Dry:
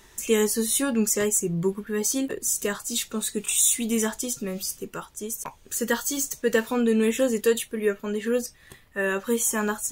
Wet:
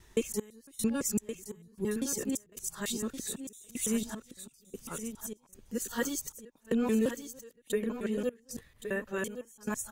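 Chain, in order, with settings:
reversed piece by piece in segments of 168 ms
low-shelf EQ 250 Hz +7.5 dB
gate pattern "xx..xx...xxx.xx" 76 BPM −24 dB
on a send: single-tap delay 1,119 ms −9.5 dB
on the sum: level −9 dB

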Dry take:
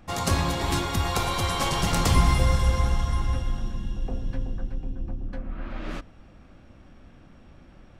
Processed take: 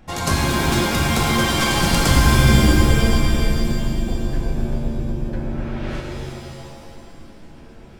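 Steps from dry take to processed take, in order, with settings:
notch filter 1,200 Hz, Q 11
reverb with rising layers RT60 1.9 s, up +7 semitones, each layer −2 dB, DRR 1.5 dB
level +3 dB

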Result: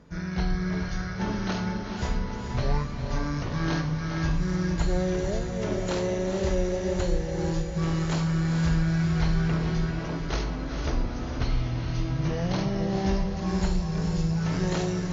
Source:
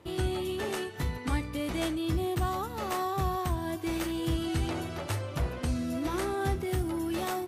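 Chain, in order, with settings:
change of speed 0.494×
feedback delay with all-pass diffusion 459 ms, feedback 55%, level −5 dB
level +3 dB

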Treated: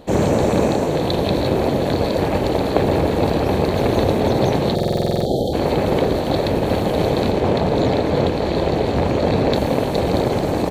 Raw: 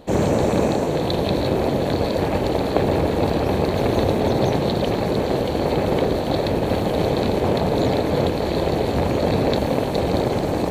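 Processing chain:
0:04.76–0:05.53: time-frequency box erased 860–3,100 Hz
0:07.31–0:09.53: parametric band 13,000 Hz −9.5 dB 1 octave
repeating echo 243 ms, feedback 43%, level −23 dB
buffer that repeats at 0:04.74, samples 2,048, times 10
level +2 dB

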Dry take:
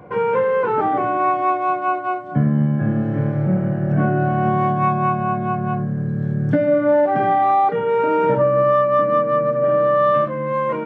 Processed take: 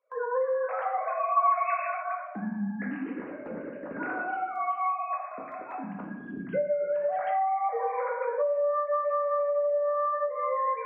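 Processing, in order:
three sine waves on the formant tracks
rotating-speaker cabinet horn 8 Hz, later 0.65 Hz, at 0:03.82
noise gate with hold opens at −31 dBFS
spectral tilt +3.5 dB per octave
convolution reverb RT60 1.1 s, pre-delay 4 ms, DRR −1.5 dB
downward compressor 12 to 1, threshold −23 dBFS, peak gain reduction 15.5 dB
0:01.35–0:02.00: low-pass with resonance 1,300 Hz → 3,200 Hz, resonance Q 4.5
level −1.5 dB

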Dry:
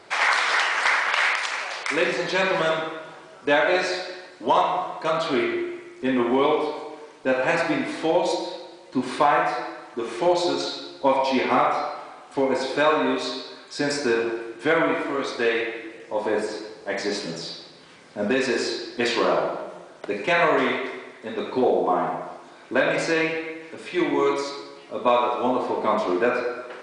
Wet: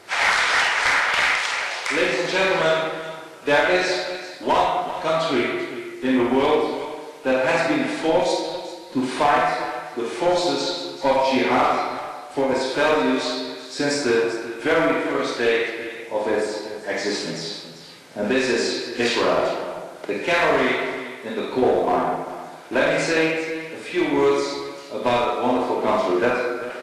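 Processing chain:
asymmetric clip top −17 dBFS
bit-depth reduction 10 bits, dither triangular
notch filter 1,100 Hz, Q 16
multi-tap delay 50/393 ms −5/−12.5 dB
level +1.5 dB
Ogg Vorbis 32 kbit/s 32,000 Hz

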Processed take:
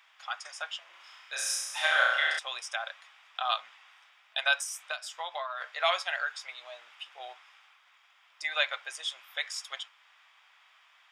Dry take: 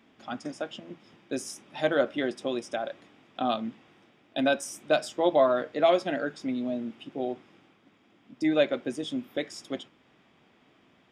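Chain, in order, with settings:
inverse Chebyshev high-pass filter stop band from 290 Hz, stop band 60 dB
0:00.90–0:02.39: flutter between parallel walls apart 5.7 metres, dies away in 0.99 s
0:04.60–0:05.61: downward compressor 16 to 1, threshold −38 dBFS, peak gain reduction 13.5 dB
level +5.5 dB

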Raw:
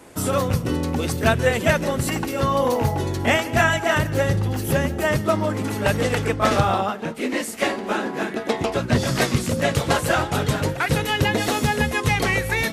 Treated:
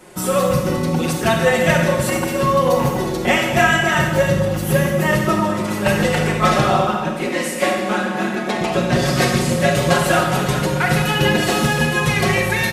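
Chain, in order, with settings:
comb filter 5.5 ms, depth 81%
convolution reverb RT60 1.4 s, pre-delay 29 ms, DRR 1.5 dB

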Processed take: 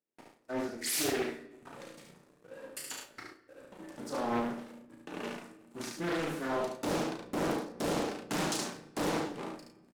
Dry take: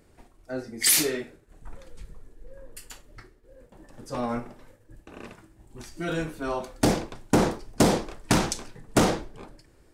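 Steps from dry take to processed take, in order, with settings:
noise gate with hold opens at −47 dBFS
high-pass filter 170 Hz 24 dB per octave
reversed playback
downward compressor 6 to 1, threshold −33 dBFS, peak gain reduction 17.5 dB
reversed playback
leveller curve on the samples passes 3
double-tracking delay 34 ms −5 dB
on a send: single-tap delay 72 ms −4 dB
on the sum: rectangular room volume 630 cubic metres, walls mixed, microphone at 0.37 metres
highs frequency-modulated by the lows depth 0.69 ms
level −9 dB

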